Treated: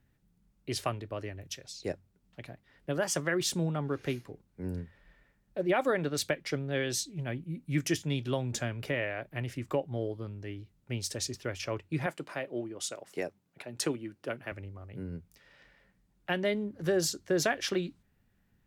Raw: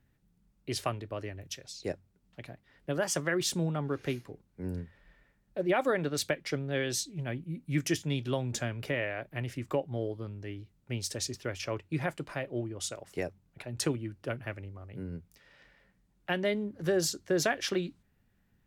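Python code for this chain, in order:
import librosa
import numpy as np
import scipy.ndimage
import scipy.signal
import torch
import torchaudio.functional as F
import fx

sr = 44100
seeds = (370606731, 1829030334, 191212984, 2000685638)

y = fx.highpass(x, sr, hz=200.0, slope=12, at=(12.06, 14.52))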